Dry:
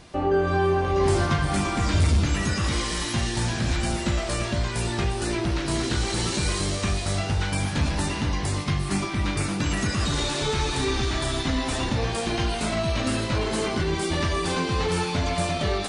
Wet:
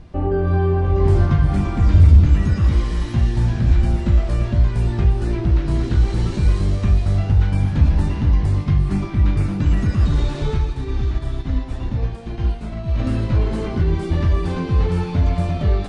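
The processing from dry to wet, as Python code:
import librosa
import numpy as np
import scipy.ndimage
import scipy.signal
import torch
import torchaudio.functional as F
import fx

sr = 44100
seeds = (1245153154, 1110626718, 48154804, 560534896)

y = fx.riaa(x, sr, side='playback')
y = fx.upward_expand(y, sr, threshold_db=-21.0, expansion=1.5, at=(10.57, 12.98), fade=0.02)
y = y * librosa.db_to_amplitude(-3.5)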